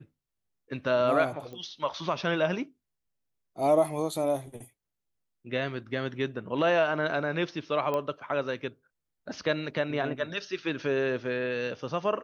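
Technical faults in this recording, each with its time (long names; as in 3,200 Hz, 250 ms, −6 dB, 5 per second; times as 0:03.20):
0:01.53: click −30 dBFS
0:07.94: click −18 dBFS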